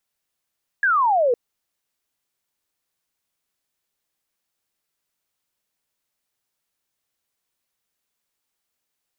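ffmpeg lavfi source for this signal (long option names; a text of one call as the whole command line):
ffmpeg -f lavfi -i "aevalsrc='0.178*clip(t/0.002,0,1)*clip((0.51-t)/0.002,0,1)*sin(2*PI*1700*0.51/log(460/1700)*(exp(log(460/1700)*t/0.51)-1))':duration=0.51:sample_rate=44100" out.wav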